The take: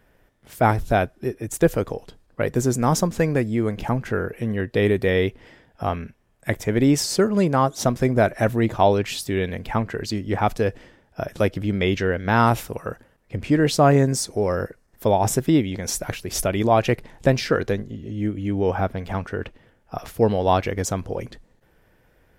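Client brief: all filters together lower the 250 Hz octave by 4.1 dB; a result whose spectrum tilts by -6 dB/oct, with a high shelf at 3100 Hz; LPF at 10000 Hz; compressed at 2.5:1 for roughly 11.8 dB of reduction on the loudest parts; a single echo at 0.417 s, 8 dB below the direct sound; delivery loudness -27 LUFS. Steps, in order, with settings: LPF 10000 Hz; bell 250 Hz -5.5 dB; high shelf 3100 Hz -9 dB; compressor 2.5:1, threshold -32 dBFS; echo 0.417 s -8 dB; gain +6.5 dB

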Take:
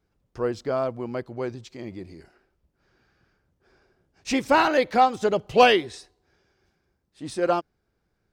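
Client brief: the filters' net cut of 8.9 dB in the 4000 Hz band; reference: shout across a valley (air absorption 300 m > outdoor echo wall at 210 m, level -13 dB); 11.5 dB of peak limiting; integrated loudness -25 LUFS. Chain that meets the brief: bell 4000 Hz -4 dB; limiter -14.5 dBFS; air absorption 300 m; outdoor echo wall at 210 m, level -13 dB; gain +4 dB

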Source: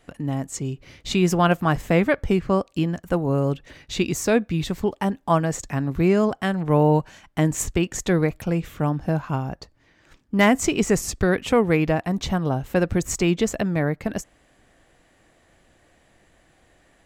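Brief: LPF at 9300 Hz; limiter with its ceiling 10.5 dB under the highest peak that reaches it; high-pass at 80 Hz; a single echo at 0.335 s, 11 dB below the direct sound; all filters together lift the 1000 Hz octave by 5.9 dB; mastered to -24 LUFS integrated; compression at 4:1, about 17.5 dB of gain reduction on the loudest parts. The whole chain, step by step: HPF 80 Hz; LPF 9300 Hz; bell 1000 Hz +7.5 dB; compressor 4:1, threshold -32 dBFS; limiter -27.5 dBFS; echo 0.335 s -11 dB; gain +14 dB

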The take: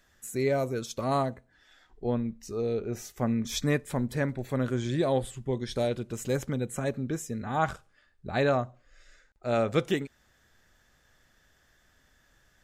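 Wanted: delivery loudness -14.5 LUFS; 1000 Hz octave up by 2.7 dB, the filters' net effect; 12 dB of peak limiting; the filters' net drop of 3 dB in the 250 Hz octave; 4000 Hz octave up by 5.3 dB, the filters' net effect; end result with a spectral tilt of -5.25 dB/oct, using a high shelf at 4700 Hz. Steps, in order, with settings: bell 250 Hz -4 dB; bell 1000 Hz +4 dB; bell 4000 Hz +9 dB; high shelf 4700 Hz -6.5 dB; gain +19 dB; limiter -2.5 dBFS

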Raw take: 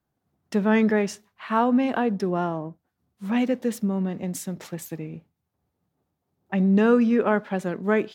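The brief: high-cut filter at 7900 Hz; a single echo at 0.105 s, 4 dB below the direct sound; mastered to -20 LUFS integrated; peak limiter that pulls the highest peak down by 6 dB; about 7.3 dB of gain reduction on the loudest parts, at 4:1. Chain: LPF 7900 Hz; compressor 4:1, threshold -24 dBFS; limiter -20 dBFS; echo 0.105 s -4 dB; gain +9 dB

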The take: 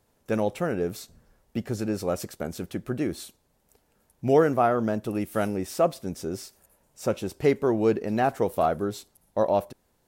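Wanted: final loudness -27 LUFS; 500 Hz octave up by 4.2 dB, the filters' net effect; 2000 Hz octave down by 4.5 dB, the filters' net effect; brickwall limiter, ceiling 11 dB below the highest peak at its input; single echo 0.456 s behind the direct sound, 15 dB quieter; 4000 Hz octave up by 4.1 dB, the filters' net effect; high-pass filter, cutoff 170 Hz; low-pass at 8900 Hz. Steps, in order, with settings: HPF 170 Hz; LPF 8900 Hz; bell 500 Hz +5.5 dB; bell 2000 Hz -8.5 dB; bell 4000 Hz +7.5 dB; limiter -16 dBFS; echo 0.456 s -15 dB; gain +1 dB

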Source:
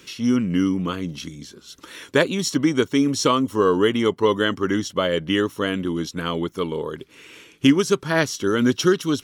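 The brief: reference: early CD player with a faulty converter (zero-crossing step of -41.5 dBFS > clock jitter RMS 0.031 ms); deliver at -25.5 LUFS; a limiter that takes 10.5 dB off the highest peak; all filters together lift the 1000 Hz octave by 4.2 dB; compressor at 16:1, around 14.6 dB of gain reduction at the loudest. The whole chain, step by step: bell 1000 Hz +5 dB; compressor 16:1, threshold -26 dBFS; limiter -24.5 dBFS; zero-crossing step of -41.5 dBFS; clock jitter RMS 0.031 ms; gain +8 dB

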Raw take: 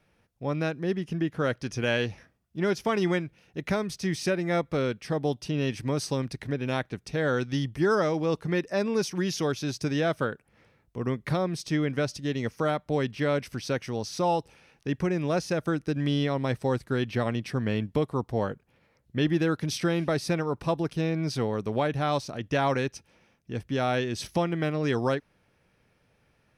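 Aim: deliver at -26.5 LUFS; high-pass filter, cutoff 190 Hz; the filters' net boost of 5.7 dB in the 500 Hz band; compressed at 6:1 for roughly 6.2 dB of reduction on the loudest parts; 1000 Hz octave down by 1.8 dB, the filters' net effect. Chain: HPF 190 Hz; bell 500 Hz +8.5 dB; bell 1000 Hz -6.5 dB; compressor 6:1, threshold -24 dBFS; gain +3.5 dB

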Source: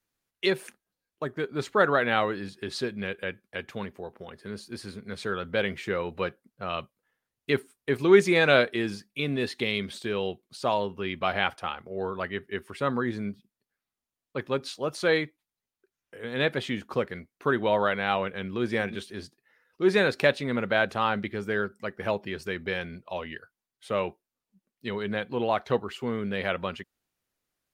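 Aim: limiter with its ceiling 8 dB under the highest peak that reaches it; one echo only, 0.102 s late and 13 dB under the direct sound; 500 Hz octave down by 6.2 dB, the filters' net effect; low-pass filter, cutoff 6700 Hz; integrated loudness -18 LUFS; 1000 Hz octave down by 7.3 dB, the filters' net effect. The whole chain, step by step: LPF 6700 Hz; bell 500 Hz -6 dB; bell 1000 Hz -8.5 dB; limiter -19 dBFS; echo 0.102 s -13 dB; gain +16 dB

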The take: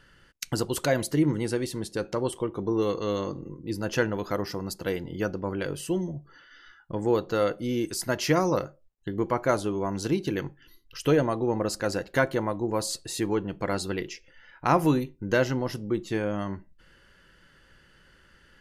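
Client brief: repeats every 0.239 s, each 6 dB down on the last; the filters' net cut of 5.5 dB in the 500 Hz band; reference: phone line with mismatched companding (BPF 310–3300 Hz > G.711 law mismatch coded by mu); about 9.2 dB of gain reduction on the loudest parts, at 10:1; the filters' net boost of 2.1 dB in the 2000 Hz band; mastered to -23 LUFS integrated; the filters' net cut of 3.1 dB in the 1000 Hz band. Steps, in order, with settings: bell 500 Hz -5 dB; bell 1000 Hz -4 dB; bell 2000 Hz +5.5 dB; compressor 10:1, threshold -28 dBFS; BPF 310–3300 Hz; feedback echo 0.239 s, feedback 50%, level -6 dB; G.711 law mismatch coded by mu; gain +12 dB

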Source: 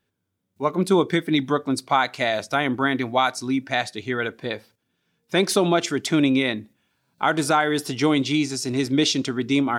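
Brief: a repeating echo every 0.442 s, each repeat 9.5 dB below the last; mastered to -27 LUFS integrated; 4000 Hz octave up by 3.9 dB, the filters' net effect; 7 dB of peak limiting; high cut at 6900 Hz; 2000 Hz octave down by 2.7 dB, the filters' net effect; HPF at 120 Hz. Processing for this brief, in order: HPF 120 Hz; LPF 6900 Hz; bell 2000 Hz -5 dB; bell 4000 Hz +6.5 dB; limiter -12.5 dBFS; feedback echo 0.442 s, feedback 33%, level -9.5 dB; gain -2.5 dB

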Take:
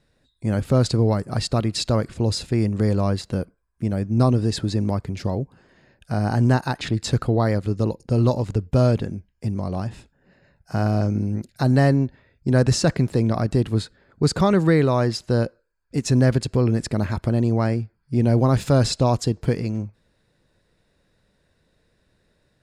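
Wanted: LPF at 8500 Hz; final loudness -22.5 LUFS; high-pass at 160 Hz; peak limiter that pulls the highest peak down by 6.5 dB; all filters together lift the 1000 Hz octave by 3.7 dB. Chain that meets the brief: HPF 160 Hz; LPF 8500 Hz; bell 1000 Hz +5 dB; gain +2.5 dB; limiter -8 dBFS

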